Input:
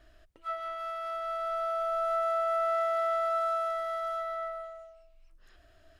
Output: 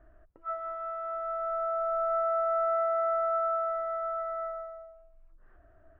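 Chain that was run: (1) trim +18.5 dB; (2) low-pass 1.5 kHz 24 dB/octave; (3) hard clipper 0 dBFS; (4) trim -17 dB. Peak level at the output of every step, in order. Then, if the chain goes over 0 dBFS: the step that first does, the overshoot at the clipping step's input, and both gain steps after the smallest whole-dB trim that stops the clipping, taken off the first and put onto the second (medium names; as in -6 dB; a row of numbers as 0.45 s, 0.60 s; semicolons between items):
-3.0 dBFS, -4.0 dBFS, -4.0 dBFS, -21.0 dBFS; nothing clips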